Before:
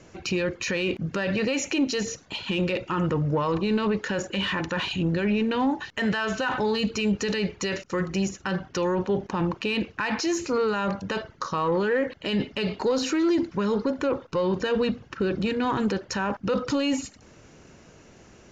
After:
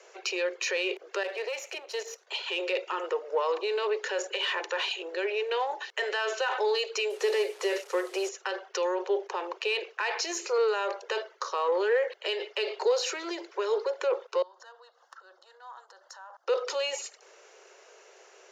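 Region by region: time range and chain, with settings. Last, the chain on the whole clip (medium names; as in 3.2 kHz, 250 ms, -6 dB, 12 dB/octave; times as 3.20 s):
1.23–2.27 s: partial rectifier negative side -7 dB + treble shelf 6.8 kHz -6 dB + level held to a coarse grid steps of 10 dB
7.10–8.29 s: one-bit delta coder 64 kbps, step -43 dBFS + bass shelf 460 Hz +7.5 dB
14.42–16.48 s: bass shelf 200 Hz -9.5 dB + compression 5:1, threshold -42 dBFS + static phaser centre 1 kHz, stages 4
whole clip: dynamic bell 1.3 kHz, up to -4 dB, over -40 dBFS, Q 1.4; steep high-pass 380 Hz 96 dB/octave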